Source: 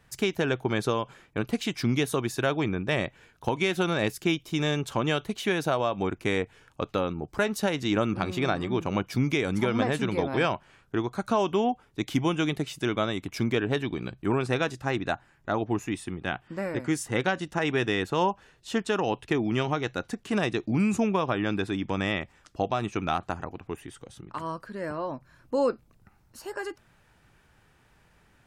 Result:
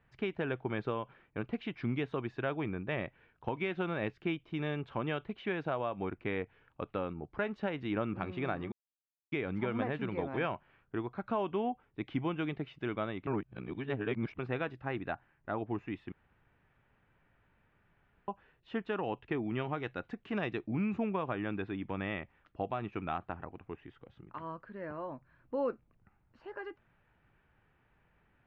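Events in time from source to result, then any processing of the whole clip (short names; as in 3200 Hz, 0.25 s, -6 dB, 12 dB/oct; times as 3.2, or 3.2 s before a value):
8.72–9.32 mute
13.27–14.39 reverse
16.12–18.28 room tone
19.77–20.61 bell 13000 Hz +14 dB 1.7 oct
whole clip: LPF 2800 Hz 24 dB/oct; gain -8.5 dB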